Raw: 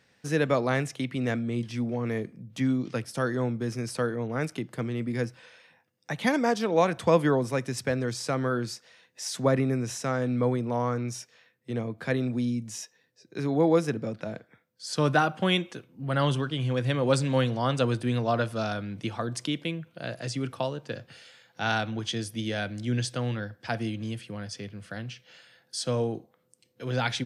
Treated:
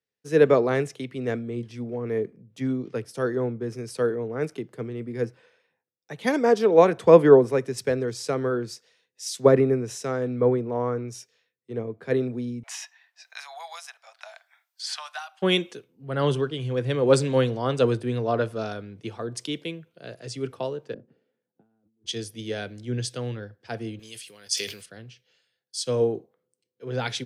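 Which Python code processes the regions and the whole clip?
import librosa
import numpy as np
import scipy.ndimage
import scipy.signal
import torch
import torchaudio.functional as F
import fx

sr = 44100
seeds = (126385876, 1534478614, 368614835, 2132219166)

y = fx.chain(x, sr, fx.steep_highpass(hz=690.0, slope=72),
    fx.band_squash(depth_pct=100), at=(12.63, 15.42))
y = fx.chain(y, sr, fx.bandpass_q(hz=240.0, q=2.4),
    fx.over_compress(threshold_db=-49.0, ratio=-1.0), at=(20.94, 22.06))
y = fx.chain(y, sr, fx.tilt_eq(slope=4.0),
    fx.sustainer(db_per_s=50.0), at=(23.99, 24.86))
y = fx.peak_eq(y, sr, hz=420.0, db=11.5, octaves=0.49)
y = fx.band_widen(y, sr, depth_pct=70)
y = y * 10.0 ** (-2.0 / 20.0)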